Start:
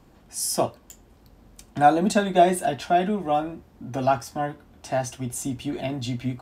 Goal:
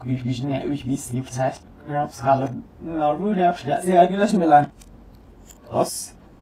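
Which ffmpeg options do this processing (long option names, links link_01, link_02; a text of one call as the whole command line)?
ffmpeg -i in.wav -filter_complex "[0:a]areverse,highshelf=frequency=2600:gain=-8.5,asplit=2[link_01][link_02];[link_02]acompressor=threshold=-32dB:ratio=6,volume=-2.5dB[link_03];[link_01][link_03]amix=inputs=2:normalize=0,aecho=1:1:22|56:0.266|0.158,volume=1.5dB" out.wav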